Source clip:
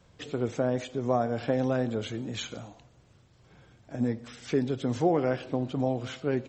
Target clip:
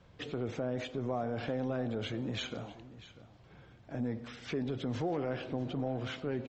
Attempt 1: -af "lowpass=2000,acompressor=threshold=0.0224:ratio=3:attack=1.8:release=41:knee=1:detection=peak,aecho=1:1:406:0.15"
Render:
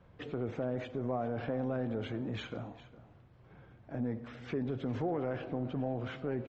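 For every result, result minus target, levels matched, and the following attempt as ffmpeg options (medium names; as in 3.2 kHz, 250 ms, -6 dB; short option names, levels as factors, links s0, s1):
echo 238 ms early; 4 kHz band -7.5 dB
-af "lowpass=2000,acompressor=threshold=0.0224:ratio=3:attack=1.8:release=41:knee=1:detection=peak,aecho=1:1:644:0.15"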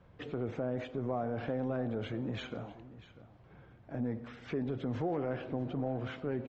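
4 kHz band -7.5 dB
-af "lowpass=4100,acompressor=threshold=0.0224:ratio=3:attack=1.8:release=41:knee=1:detection=peak,aecho=1:1:644:0.15"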